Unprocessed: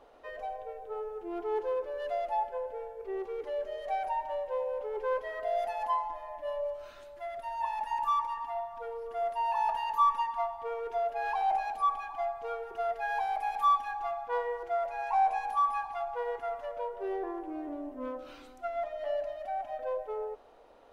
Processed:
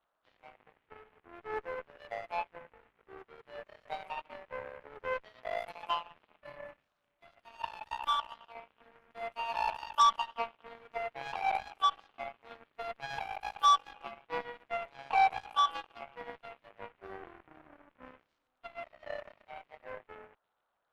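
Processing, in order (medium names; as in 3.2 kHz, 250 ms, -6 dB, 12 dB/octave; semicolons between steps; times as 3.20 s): band noise 560–1500 Hz -49 dBFS; Chebyshev shaper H 5 -36 dB, 7 -16 dB, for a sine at -15 dBFS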